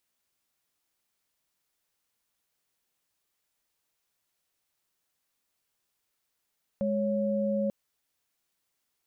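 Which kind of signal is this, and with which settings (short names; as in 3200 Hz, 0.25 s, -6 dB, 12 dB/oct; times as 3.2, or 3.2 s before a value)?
chord G#3/C#5 sine, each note -28 dBFS 0.89 s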